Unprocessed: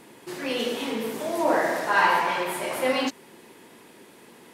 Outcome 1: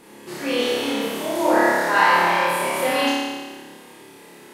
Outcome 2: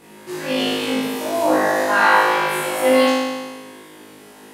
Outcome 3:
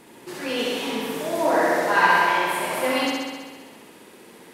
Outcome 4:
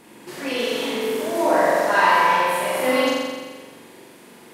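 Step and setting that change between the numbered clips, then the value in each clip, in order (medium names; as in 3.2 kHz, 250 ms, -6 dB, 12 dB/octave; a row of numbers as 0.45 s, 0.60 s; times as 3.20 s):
flutter echo, walls apart: 4.9 m, 3.3 m, 11.2 m, 7.4 m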